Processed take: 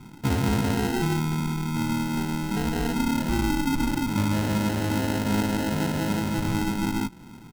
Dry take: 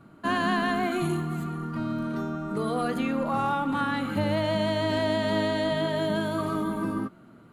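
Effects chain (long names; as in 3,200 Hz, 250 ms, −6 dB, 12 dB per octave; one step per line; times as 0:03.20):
comb filter 0.9 ms, depth 81%
in parallel at +2 dB: downward compressor, threshold −33 dBFS, peak gain reduction 13 dB
on the sum: decimation without filtering 38×
level −2.5 dB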